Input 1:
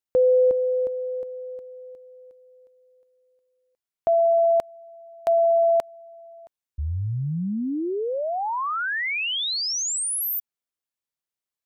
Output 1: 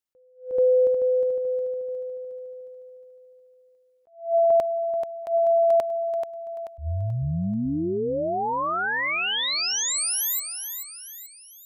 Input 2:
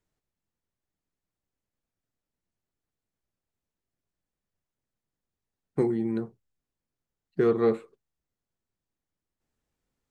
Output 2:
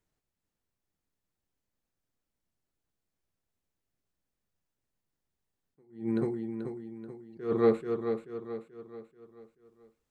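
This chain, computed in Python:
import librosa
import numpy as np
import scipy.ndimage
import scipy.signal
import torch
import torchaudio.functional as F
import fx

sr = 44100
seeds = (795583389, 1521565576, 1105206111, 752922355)

y = fx.echo_feedback(x, sr, ms=434, feedback_pct=44, wet_db=-8)
y = fx.attack_slew(y, sr, db_per_s=160.0)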